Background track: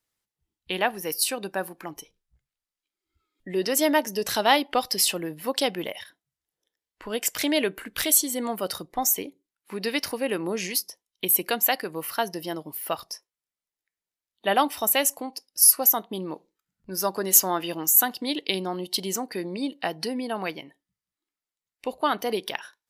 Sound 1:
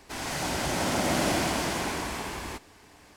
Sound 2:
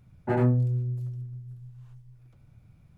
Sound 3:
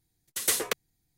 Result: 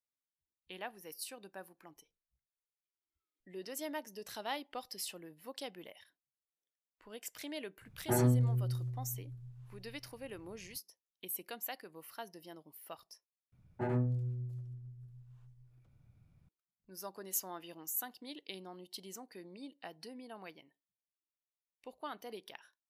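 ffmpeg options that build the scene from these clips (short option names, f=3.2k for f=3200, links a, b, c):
-filter_complex "[2:a]asplit=2[a][b];[0:a]volume=-19.5dB,asplit=2[c][d];[c]atrim=end=13.524[e];[b]atrim=end=2.97,asetpts=PTS-STARTPTS,volume=-10dB[f];[d]atrim=start=16.486[g];[a]atrim=end=2.97,asetpts=PTS-STARTPTS,volume=-5.5dB,afade=t=in:d=0.004:c=hsin,afade=t=out:st=2.966:d=0.004:c=hsin,adelay=7810[h];[e][f]acrossfade=d=0.004:c1=hsin:c2=hsin[i];[i][g]acrossfade=d=0.004:c1=hsin:c2=hsin[j];[j][h]amix=inputs=2:normalize=0"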